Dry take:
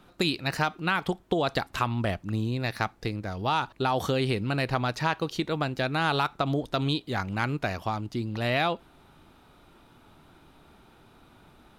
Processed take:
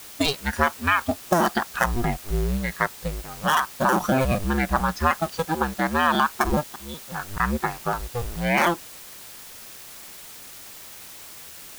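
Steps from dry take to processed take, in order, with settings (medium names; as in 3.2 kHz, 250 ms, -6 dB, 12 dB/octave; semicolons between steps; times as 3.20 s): cycle switcher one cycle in 2, inverted; spectral noise reduction 14 dB; 6.63–7.40 s: slow attack 771 ms; in parallel at -10.5 dB: word length cut 6-bit, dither triangular; on the sum: trim +4.5 dB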